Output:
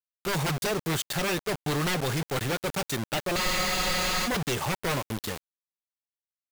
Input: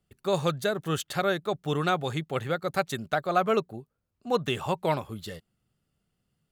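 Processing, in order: bit crusher 6-bit; wavefolder -25.5 dBFS; spectral freeze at 3.39 s, 0.87 s; trim +4 dB

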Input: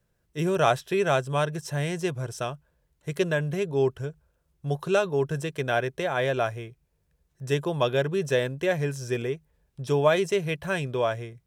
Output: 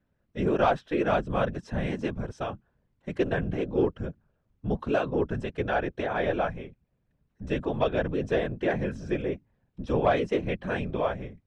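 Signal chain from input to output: Bessel low-pass 2.4 kHz, order 2; saturation -11 dBFS, distortion -25 dB; whisper effect; trim -1 dB

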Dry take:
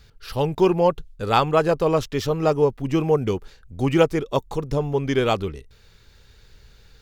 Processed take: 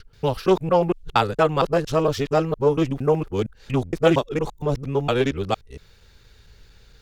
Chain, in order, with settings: time reversed locally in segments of 231 ms; loudspeaker Doppler distortion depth 0.19 ms

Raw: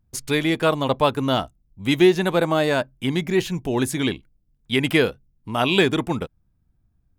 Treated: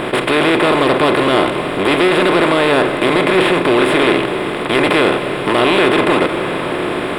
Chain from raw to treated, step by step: spectral levelling over time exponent 0.2; waveshaping leveller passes 3; boxcar filter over 7 samples; tilt EQ +1.5 dB/octave; on a send: reverberation RT60 5.6 s, pre-delay 19 ms, DRR 8.5 dB; on the sum: trim -8.5 dB

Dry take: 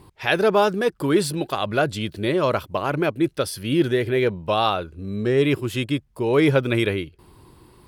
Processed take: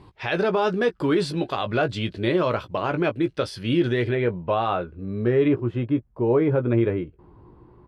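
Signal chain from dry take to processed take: low-pass 4.5 kHz 12 dB/octave, from 4.15 s 2 kHz, from 5.48 s 1.1 kHz; peak limiter -13.5 dBFS, peak gain reduction 8 dB; doubling 17 ms -8.5 dB

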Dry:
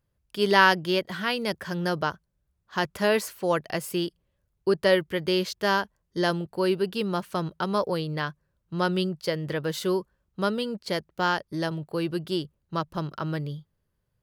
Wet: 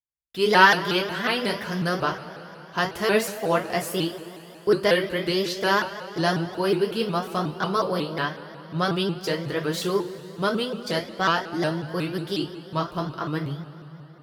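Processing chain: expander -41 dBFS; two-slope reverb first 0.25 s, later 3.8 s, from -21 dB, DRR -0.5 dB; vibrato with a chosen wave saw up 5.5 Hz, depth 160 cents

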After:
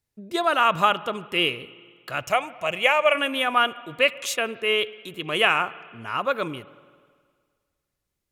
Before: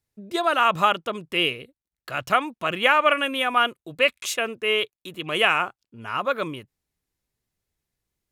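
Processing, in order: 2.26–3.15 s: FFT filter 110 Hz 0 dB, 290 Hz -11 dB, 620 Hz +3 dB, 1.5 kHz -8 dB, 2.3 kHz +3 dB, 4 kHz -6 dB, 6.8 kHz +6 dB, 9.9 kHz 0 dB; on a send: reverberation RT60 1.8 s, pre-delay 49 ms, DRR 17.5 dB

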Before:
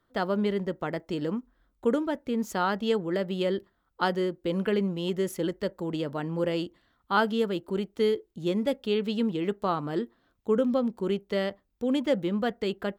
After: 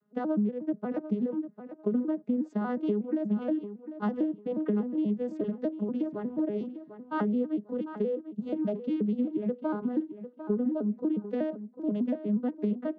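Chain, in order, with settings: vocoder on a broken chord minor triad, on G#3, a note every 120 ms; tilt EQ -3 dB/octave; compression 5:1, threshold -26 dBFS, peak gain reduction 12 dB; on a send: tape echo 747 ms, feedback 24%, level -10.5 dB, low-pass 3.4 kHz

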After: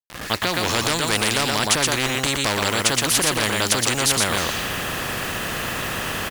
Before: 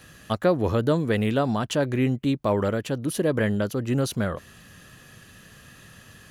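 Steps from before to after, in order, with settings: fade-in on the opening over 0.79 s; level-controlled noise filter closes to 1.8 kHz, open at -23.5 dBFS; resampled via 22.05 kHz; word length cut 10-bit, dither none; on a send: delay 119 ms -6.5 dB; on the sum: one-sided clip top -16.5 dBFS; loudness maximiser +18.5 dB; spectrum-flattening compressor 4:1; trim -1 dB

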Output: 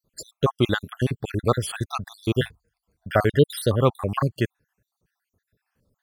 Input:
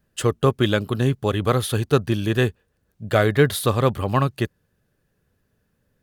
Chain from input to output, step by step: random holes in the spectrogram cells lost 64%; 2.39–3.05 s: rippled EQ curve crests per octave 1.8, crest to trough 7 dB

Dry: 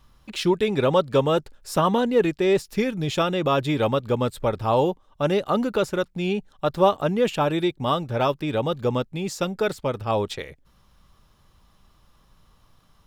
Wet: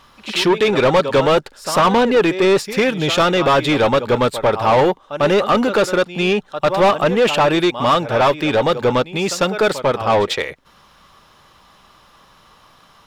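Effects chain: pre-echo 99 ms -16.5 dB; overdrive pedal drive 23 dB, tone 3.5 kHz, clips at -5 dBFS

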